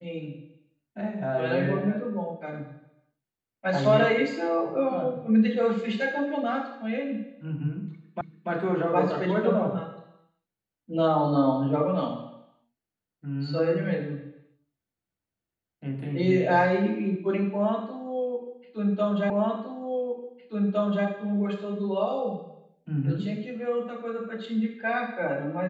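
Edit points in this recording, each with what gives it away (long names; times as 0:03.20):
0:08.21: the same again, the last 0.29 s
0:19.30: the same again, the last 1.76 s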